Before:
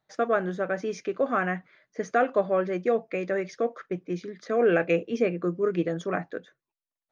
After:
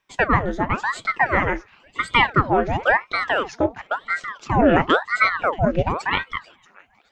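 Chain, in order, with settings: feedback echo behind a high-pass 632 ms, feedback 52%, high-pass 1.5 kHz, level -19 dB; ring modulator with a swept carrier 950 Hz, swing 85%, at 0.96 Hz; trim +9 dB

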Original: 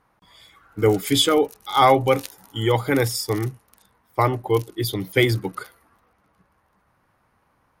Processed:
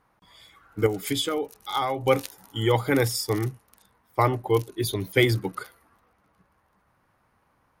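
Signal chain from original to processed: 0.86–2.07 s: compression 12:1, threshold -21 dBFS, peak gain reduction 11.5 dB; 4.68–5.08 s: rippled EQ curve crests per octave 1.5, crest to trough 8 dB; trim -2 dB

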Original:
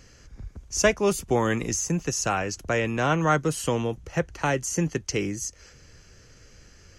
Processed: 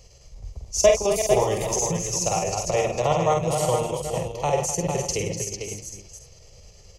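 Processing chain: chunks repeated in reverse 174 ms, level -6 dB; peaking EQ 610 Hz +3 dB 0.6 oct; static phaser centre 640 Hz, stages 4; square tremolo 9.5 Hz, depth 65%, duty 70%; on a send: multi-tap echo 48/252/450/520 ms -4.5/-11.5/-6/-14.5 dB; on the sum: trim +2.5 dB

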